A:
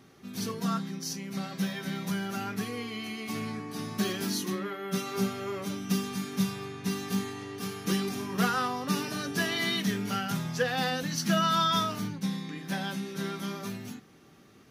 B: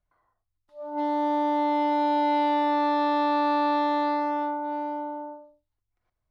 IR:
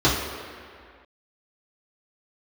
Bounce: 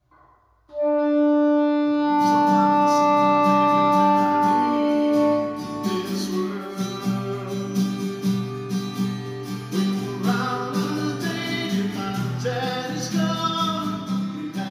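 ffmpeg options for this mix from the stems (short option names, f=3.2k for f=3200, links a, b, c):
-filter_complex "[0:a]adelay=1850,volume=-5.5dB,asplit=3[a][b][c];[b]volume=-12dB[d];[c]volume=-12.5dB[e];[1:a]acompressor=threshold=-32dB:ratio=6,asoftclip=type=tanh:threshold=-31dB,volume=2dB,asplit=2[f][g];[g]volume=-5.5dB[h];[2:a]atrim=start_sample=2205[i];[d][h]amix=inputs=2:normalize=0[j];[j][i]afir=irnorm=-1:irlink=0[k];[e]aecho=0:1:548:1[l];[a][f][k][l]amix=inputs=4:normalize=0"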